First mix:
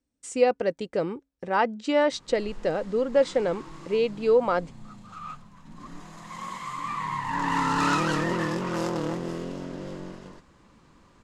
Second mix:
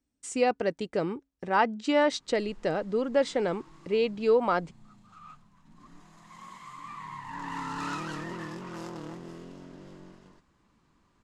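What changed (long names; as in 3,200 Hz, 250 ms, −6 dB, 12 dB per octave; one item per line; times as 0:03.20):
background −10.5 dB
master: add parametric band 520 Hz −6.5 dB 0.26 octaves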